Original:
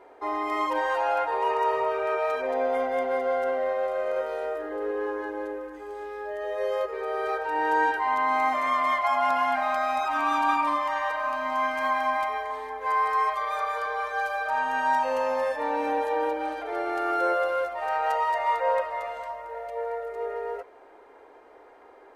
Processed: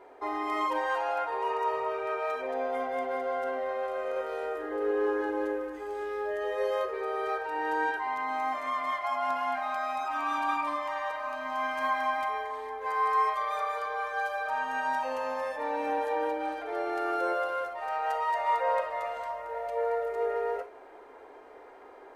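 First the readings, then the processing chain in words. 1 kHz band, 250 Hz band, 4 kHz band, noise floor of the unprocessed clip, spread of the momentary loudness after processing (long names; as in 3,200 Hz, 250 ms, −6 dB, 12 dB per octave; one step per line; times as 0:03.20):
−4.5 dB, −2.5 dB, −4.0 dB, −51 dBFS, 7 LU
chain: speech leveller 2 s
reverb whose tail is shaped and stops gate 80 ms flat, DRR 10 dB
level −4.5 dB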